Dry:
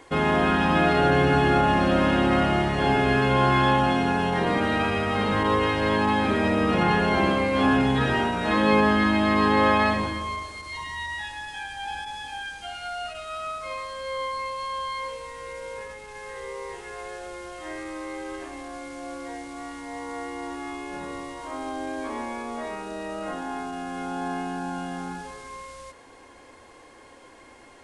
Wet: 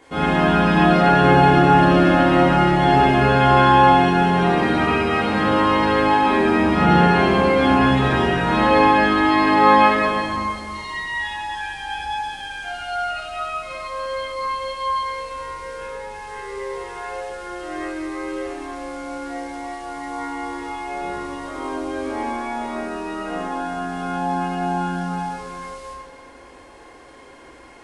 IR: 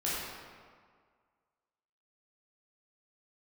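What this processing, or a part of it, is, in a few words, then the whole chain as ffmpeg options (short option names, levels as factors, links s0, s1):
stairwell: -filter_complex "[1:a]atrim=start_sample=2205[s0];[0:a][s0]afir=irnorm=-1:irlink=0,volume=0.794"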